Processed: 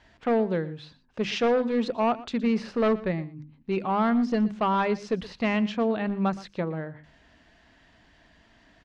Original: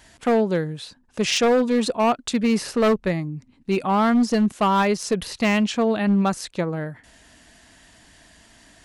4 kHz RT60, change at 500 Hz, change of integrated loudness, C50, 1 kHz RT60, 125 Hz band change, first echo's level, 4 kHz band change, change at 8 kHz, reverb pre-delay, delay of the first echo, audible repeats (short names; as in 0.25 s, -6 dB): none, -4.5 dB, -5.0 dB, none, none, -5.5 dB, -18.5 dB, -9.5 dB, under -15 dB, none, 0.119 s, 1